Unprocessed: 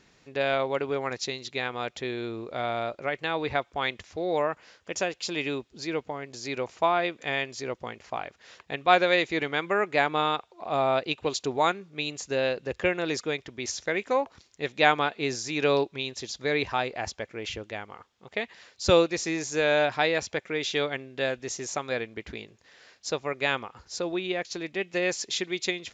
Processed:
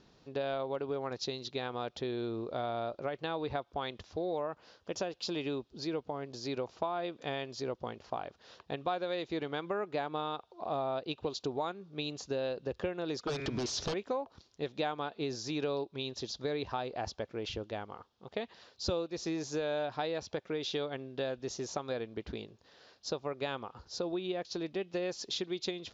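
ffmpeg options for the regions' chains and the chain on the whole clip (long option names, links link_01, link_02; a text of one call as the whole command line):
ffmpeg -i in.wav -filter_complex "[0:a]asettb=1/sr,asplit=3[link_01][link_02][link_03];[link_01]atrim=end=13.274[link_04];[link_02]atrim=start=13.27:end=13.94,asetpts=PTS-STARTPTS,afade=type=in:duration=0.004:curve=qsin,afade=type=out:start_time=0.666:duration=0.004:curve=qsin,bandreject=frequency=136.8:width_type=h:width=4,bandreject=frequency=273.6:width_type=h:width=4,bandreject=frequency=410.4:width_type=h:width=4,bandreject=frequency=547.2:width_type=h:width=4,bandreject=frequency=684:width_type=h:width=4,bandreject=frequency=820.8:width_type=h:width=4,bandreject=frequency=957.6:width_type=h:width=4,bandreject=frequency=1094.4:width_type=h:width=4,bandreject=frequency=1231.2:width_type=h:width=4,bandreject=frequency=1368:width_type=h:width=4,bandreject=frequency=1504.8:width_type=h:width=4,bandreject=frequency=1641.6:width_type=h:width=4,bandreject=frequency=1778.4:width_type=h:width=4,bandreject=frequency=1915.2:width_type=h:width=4,bandreject=frequency=2052:width_type=h:width=4,bandreject=frequency=2188.8:width_type=h:width=4,bandreject=frequency=2325.6:width_type=h:width=4,bandreject=frequency=2462.4:width_type=h:width=4,bandreject=frequency=2599.2:width_type=h:width=4,acompressor=threshold=-45dB:ratio=2:attack=3.2:release=140:knee=1:detection=peak,aeval=exprs='0.0668*sin(PI/2*6.31*val(0)/0.0668)':channel_layout=same[link_05];[link_03]atrim=start=13.936[link_06];[link_04][link_05]acrossfade=duration=0.004:curve1=hsin:curve2=qsin[link_07];[link_07][link_06]acrossfade=duration=0.004:curve1=qsin:curve2=hsin,lowpass=frequency=5200:width=0.5412,lowpass=frequency=5200:width=1.3066,equalizer=frequency=2100:width=1.6:gain=-13,acompressor=threshold=-32dB:ratio=5" out.wav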